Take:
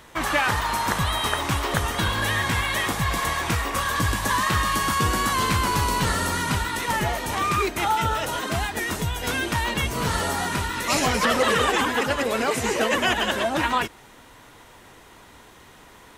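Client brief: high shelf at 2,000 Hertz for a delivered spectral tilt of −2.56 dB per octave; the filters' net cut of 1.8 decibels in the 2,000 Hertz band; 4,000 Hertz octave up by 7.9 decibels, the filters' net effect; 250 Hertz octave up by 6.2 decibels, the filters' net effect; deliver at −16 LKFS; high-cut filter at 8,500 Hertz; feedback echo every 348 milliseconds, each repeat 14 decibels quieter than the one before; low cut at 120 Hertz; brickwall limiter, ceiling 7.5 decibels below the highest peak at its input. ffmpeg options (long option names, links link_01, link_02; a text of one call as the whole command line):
ffmpeg -i in.wav -af "highpass=120,lowpass=8500,equalizer=frequency=250:width_type=o:gain=8,highshelf=frequency=2000:gain=8,equalizer=frequency=2000:width_type=o:gain=-8.5,equalizer=frequency=4000:width_type=o:gain=5.5,alimiter=limit=-11.5dB:level=0:latency=1,aecho=1:1:348|696:0.2|0.0399,volume=5dB" out.wav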